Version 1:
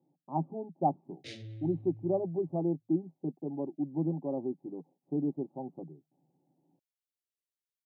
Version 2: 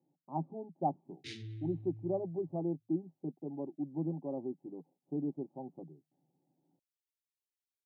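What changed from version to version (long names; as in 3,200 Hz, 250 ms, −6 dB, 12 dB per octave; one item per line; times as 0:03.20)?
speech −4.5 dB
background: add linear-phase brick-wall band-stop 450–1,300 Hz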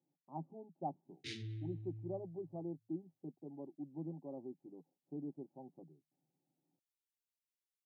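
speech −8.5 dB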